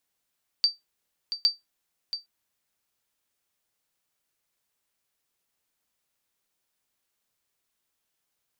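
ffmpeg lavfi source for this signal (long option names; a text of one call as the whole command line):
ffmpeg -f lavfi -i "aevalsrc='0.237*(sin(2*PI*4650*mod(t,0.81))*exp(-6.91*mod(t,0.81)/0.17)+0.299*sin(2*PI*4650*max(mod(t,0.81)-0.68,0))*exp(-6.91*max(mod(t,0.81)-0.68,0)/0.17))':duration=1.62:sample_rate=44100" out.wav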